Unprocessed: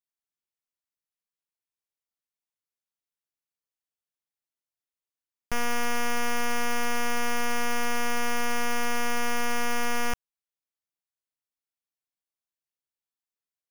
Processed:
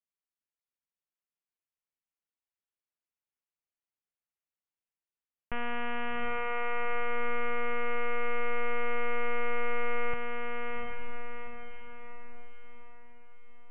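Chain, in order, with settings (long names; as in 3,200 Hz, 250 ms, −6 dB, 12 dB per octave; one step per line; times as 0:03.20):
Butterworth low-pass 3,100 Hz 72 dB per octave
feedback delay with all-pass diffusion 769 ms, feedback 47%, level −3 dB
level −5.5 dB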